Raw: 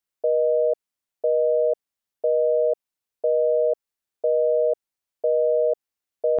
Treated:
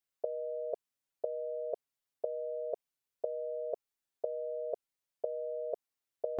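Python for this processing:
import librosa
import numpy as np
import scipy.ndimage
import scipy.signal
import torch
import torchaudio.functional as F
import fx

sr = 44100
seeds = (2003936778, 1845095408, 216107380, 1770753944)

y = x + 0.77 * np.pad(x, (int(7.3 * sr / 1000.0), 0))[:len(x)]
y = y * 10.0 ** (-5.5 / 20.0)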